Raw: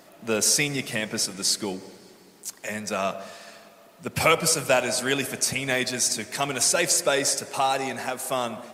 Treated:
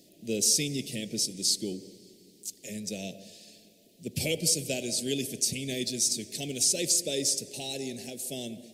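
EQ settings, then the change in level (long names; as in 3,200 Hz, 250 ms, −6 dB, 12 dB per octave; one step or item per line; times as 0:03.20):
Chebyshev band-stop filter 370–3,700 Hz, order 2
−2.5 dB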